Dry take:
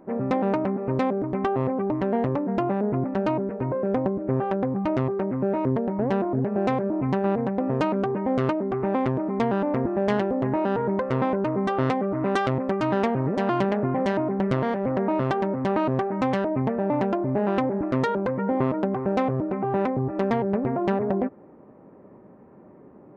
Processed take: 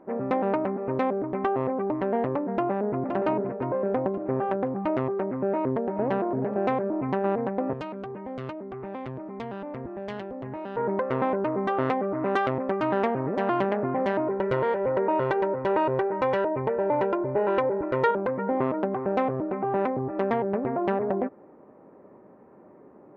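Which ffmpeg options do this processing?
ffmpeg -i in.wav -filter_complex "[0:a]asplit=2[link_01][link_02];[link_02]afade=type=in:start_time=2.56:duration=0.01,afade=type=out:start_time=3:duration=0.01,aecho=0:1:520|1040|1560|2080|2600|3120:0.473151|0.236576|0.118288|0.0591439|0.029572|0.014786[link_03];[link_01][link_03]amix=inputs=2:normalize=0,asplit=2[link_04][link_05];[link_05]afade=type=in:start_time=5.44:duration=0.01,afade=type=out:start_time=6.1:duration=0.01,aecho=0:1:430|860:0.298538|0.0447807[link_06];[link_04][link_06]amix=inputs=2:normalize=0,asettb=1/sr,asplit=3[link_07][link_08][link_09];[link_07]atrim=end=7.734[link_10];[link_08]atrim=start=7.73:end=10.77,asetpts=PTS-STARTPTS,afade=type=in:duration=0.004:curve=qsin,afade=type=out:start_time=3.036:duration=0.004:curve=qsin,acrossover=split=140|3000[link_11][link_12][link_13];[link_12]acompressor=threshold=-51dB:ratio=1.5:attack=3.2:release=140:knee=2.83:detection=peak[link_14];[link_11][link_14][link_13]amix=inputs=3:normalize=0[link_15];[link_09]atrim=start=10.766[link_16];[link_10][link_15]acrossfade=duration=0.004:curve1=hsin:curve2=qsin[link_17];[link_17][link_16]acrossfade=duration=0.004:curve1=qsin:curve2=hsin,asettb=1/sr,asplit=3[link_18][link_19][link_20];[link_18]atrim=end=14.274[link_21];[link_19]atrim=start=14.27:end=18.11,asetpts=PTS-STARTPTS,afade=type=in:duration=0.004:curve=qsin,afade=type=out:start_time=3.836:duration=0.004:curve=qsin,aecho=1:1:2.1:0.65,atrim=end_sample=169344[link_22];[link_20]atrim=start=18.106[link_23];[link_21][link_22]acrossfade=duration=0.004:curve1=hsin:curve2=qsin[link_24];[link_24][link_23]acrossfade=duration=0.004:curve1=qsin:curve2=hsin,bass=frequency=250:gain=-8,treble=frequency=4000:gain=-14" out.wav

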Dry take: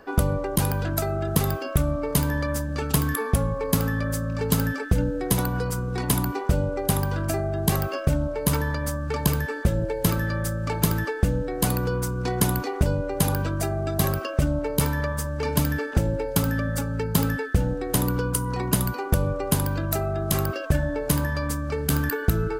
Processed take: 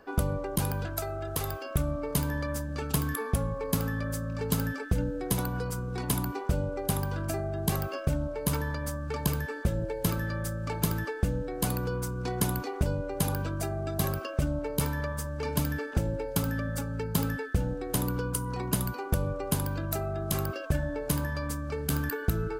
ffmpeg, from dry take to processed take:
ffmpeg -i in.wav -filter_complex "[0:a]asettb=1/sr,asplit=3[link_01][link_02][link_03];[link_01]atrim=end=0.864[link_04];[link_02]atrim=start=0.86:end=1.71,asetpts=PTS-STARTPTS,afade=type=in:duration=0.004:curve=qsin,afade=type=out:start_time=0.846:duration=0.004:curve=qsin,equalizer=frequency=190:width=1.5:gain=-14.5[link_05];[link_03]atrim=start=1.706[link_06];[link_04][link_05]acrossfade=duration=0.004:curve1=hsin:curve2=qsin[link_07];[link_07][link_06]acrossfade=duration=0.004:curve1=qsin:curve2=hsin,bandreject=frequency=1900:width=21,volume=-6dB" out.wav

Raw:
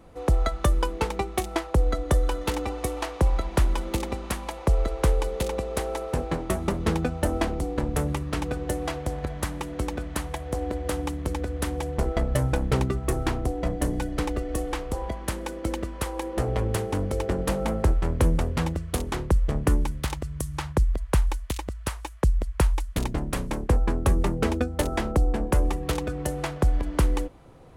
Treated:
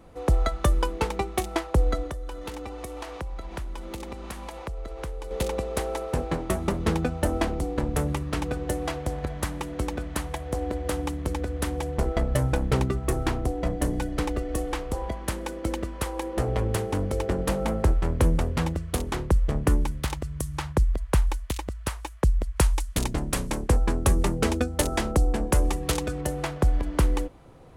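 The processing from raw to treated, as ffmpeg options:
ffmpeg -i in.wav -filter_complex "[0:a]asettb=1/sr,asplit=3[link_01][link_02][link_03];[link_01]atrim=end=2.074[link_04];[link_02]atrim=start=2.07:end=5.31,asetpts=PTS-STARTPTS,afade=type=in:duration=0.004:curve=qsin,afade=type=out:start_time=3.236:duration=0.004:curve=qsin,acompressor=threshold=-33dB:ratio=4:attack=3.2:release=140:knee=1:detection=peak[link_05];[link_03]atrim=start=5.306[link_06];[link_04][link_05]acrossfade=duration=0.004:curve1=hsin:curve2=qsin[link_07];[link_07][link_06]acrossfade=duration=0.004:curve1=qsin:curve2=hsin,asettb=1/sr,asplit=3[link_08][link_09][link_10];[link_08]atrim=end=22.564[link_11];[link_09]atrim=start=22.56:end=26.21,asetpts=PTS-STARTPTS,afade=type=in:duration=0.004:curve=qsin,afade=type=out:start_time=3.646:duration=0.004:curve=qsin,equalizer=frequency=8200:width=0.44:gain=7.5[link_12];[link_10]atrim=start=26.206[link_13];[link_11][link_12]acrossfade=duration=0.004:curve1=hsin:curve2=qsin[link_14];[link_14][link_13]acrossfade=duration=0.004:curve1=qsin:curve2=hsin" out.wav

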